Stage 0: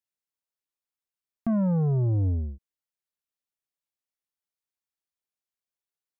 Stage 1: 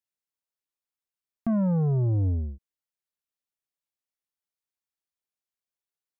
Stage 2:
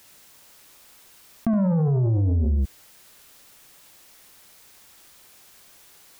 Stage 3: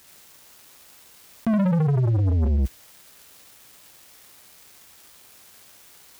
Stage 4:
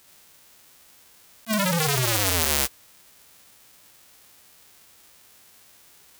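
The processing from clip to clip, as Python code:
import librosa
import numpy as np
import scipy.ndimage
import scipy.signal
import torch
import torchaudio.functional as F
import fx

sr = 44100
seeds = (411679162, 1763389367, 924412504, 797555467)

y1 = x
y2 = y1 + 10.0 ** (-7.0 / 20.0) * np.pad(y1, (int(70 * sr / 1000.0), 0))[:len(y1)]
y2 = fx.env_flatten(y2, sr, amount_pct=100)
y3 = scipy.signal.sosfilt(scipy.signal.butter(4, 50.0, 'highpass', fs=sr, output='sos'), y2)
y3 = fx.leveller(y3, sr, passes=3)
y3 = F.gain(torch.from_numpy(y3), -4.0).numpy()
y4 = fx.envelope_flatten(y3, sr, power=0.1)
y4 = fx.attack_slew(y4, sr, db_per_s=540.0)
y4 = F.gain(torch.from_numpy(y4), -3.0).numpy()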